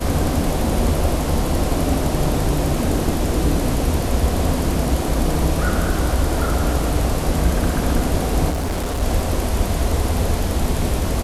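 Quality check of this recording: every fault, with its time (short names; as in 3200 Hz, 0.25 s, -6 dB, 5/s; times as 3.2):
8.49–9.03 clipped -19 dBFS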